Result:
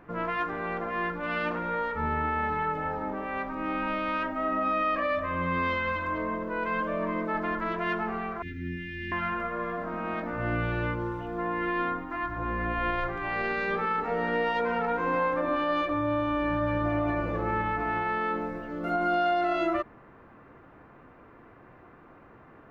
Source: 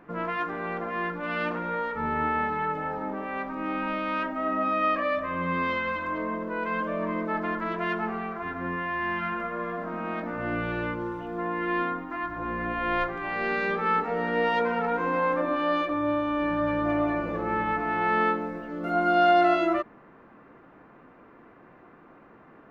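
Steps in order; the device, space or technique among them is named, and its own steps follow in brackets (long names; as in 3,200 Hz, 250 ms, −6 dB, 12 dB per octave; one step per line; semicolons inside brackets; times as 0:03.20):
car stereo with a boomy subwoofer (low shelf with overshoot 140 Hz +6.5 dB, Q 1.5; brickwall limiter −19 dBFS, peak gain reduction 7.5 dB)
0:08.42–0:09.12: inverse Chebyshev band-stop filter 570–1,200 Hz, stop band 50 dB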